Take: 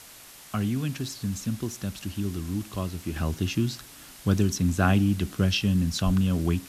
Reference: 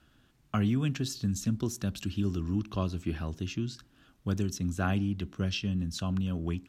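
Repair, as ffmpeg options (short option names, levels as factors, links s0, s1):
-filter_complex "[0:a]asplit=3[s0][s1][s2];[s0]afade=t=out:st=6.05:d=0.02[s3];[s1]highpass=f=140:w=0.5412,highpass=f=140:w=1.3066,afade=t=in:st=6.05:d=0.02,afade=t=out:st=6.17:d=0.02[s4];[s2]afade=t=in:st=6.17:d=0.02[s5];[s3][s4][s5]amix=inputs=3:normalize=0,afwtdn=0.005,asetnsamples=n=441:p=0,asendcmd='3.16 volume volume -7.5dB',volume=1"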